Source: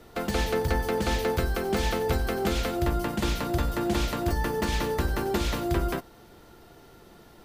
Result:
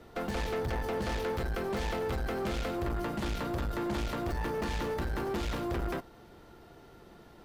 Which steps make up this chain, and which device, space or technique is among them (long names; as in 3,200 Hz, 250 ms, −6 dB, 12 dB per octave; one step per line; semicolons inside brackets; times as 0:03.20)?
tube preamp driven hard (tube saturation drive 29 dB, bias 0.45; high-shelf EQ 4,800 Hz −8.5 dB)